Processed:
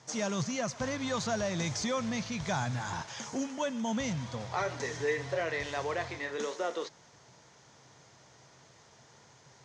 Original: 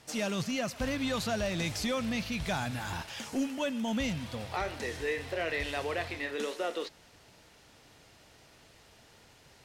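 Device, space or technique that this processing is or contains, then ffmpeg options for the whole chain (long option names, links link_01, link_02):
car door speaker: -filter_complex "[0:a]asettb=1/sr,asplit=3[link_01][link_02][link_03];[link_01]atrim=end=4.574[link_04];[link_02]atrim=start=4.57:end=5.4,asetpts=PTS-STARTPTS,afade=type=in:duration=0.004:curve=qsin,afade=type=out:start_time=0.826:duration=0.004:curve=qsin,aecho=1:1:7.1:0.63,atrim=end_sample=36603[link_05];[link_03]atrim=start=5.396[link_06];[link_04][link_05]acrossfade=duration=0.004:curve1=hsin:curve2=qsin[link_07];[link_07][link_06]acrossfade=duration=0.004:curve1=qsin:curve2=hsin,highpass=110,equalizer=frequency=130:width_type=q:width=4:gain=8,equalizer=frequency=280:width_type=q:width=4:gain=-4,equalizer=frequency=1000:width_type=q:width=4:gain=5,equalizer=frequency=2700:width_type=q:width=4:gain=-8,equalizer=frequency=4100:width_type=q:width=4:gain=-3,equalizer=frequency=6400:width_type=q:width=4:gain=8,lowpass=frequency=7000:width=0.5412,lowpass=frequency=7000:width=1.3066"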